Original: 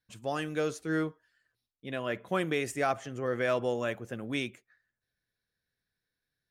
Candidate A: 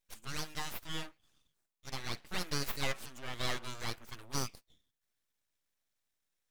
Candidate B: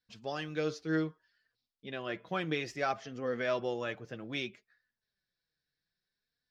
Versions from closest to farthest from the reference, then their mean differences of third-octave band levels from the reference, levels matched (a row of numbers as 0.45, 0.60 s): B, A; 3.5, 11.5 dB